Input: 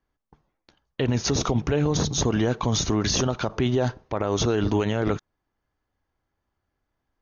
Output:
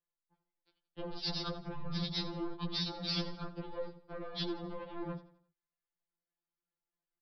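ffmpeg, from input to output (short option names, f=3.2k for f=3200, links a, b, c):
-filter_complex "[0:a]aemphasis=mode=production:type=cd,afwtdn=0.0316,acrossover=split=270|3000[a][b][c];[b]acompressor=threshold=-43dB:ratio=2[d];[a][d][c]amix=inputs=3:normalize=0,aresample=11025,asoftclip=type=tanh:threshold=-28.5dB,aresample=44100,aecho=1:1:85|170|255|340:0.168|0.0688|0.0282|0.0116,afftfilt=real='re*2.83*eq(mod(b,8),0)':imag='im*2.83*eq(mod(b,8),0)':win_size=2048:overlap=0.75"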